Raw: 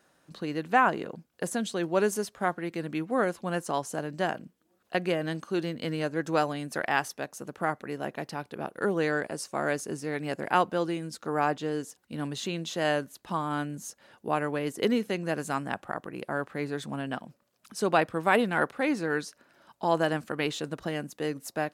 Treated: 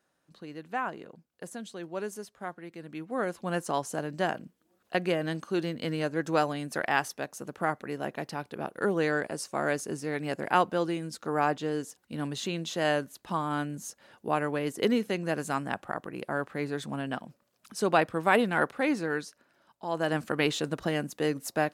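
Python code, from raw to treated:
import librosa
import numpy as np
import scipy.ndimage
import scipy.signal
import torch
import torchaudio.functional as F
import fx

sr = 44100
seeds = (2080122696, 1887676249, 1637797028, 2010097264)

y = fx.gain(x, sr, db=fx.line((2.8, -10.0), (3.53, 0.0), (18.93, 0.0), (19.85, -9.0), (20.21, 3.0)))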